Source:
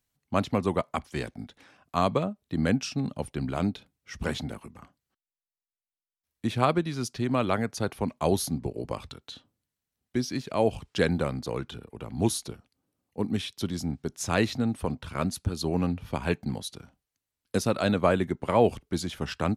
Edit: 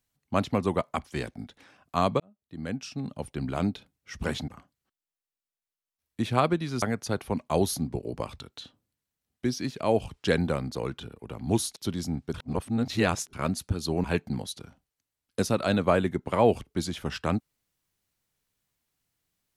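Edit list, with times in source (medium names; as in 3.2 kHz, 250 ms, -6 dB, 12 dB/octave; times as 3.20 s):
2.20–3.57 s: fade in
4.48–4.73 s: delete
7.07–7.53 s: delete
12.47–13.52 s: delete
14.10–15.09 s: reverse
15.80–16.20 s: delete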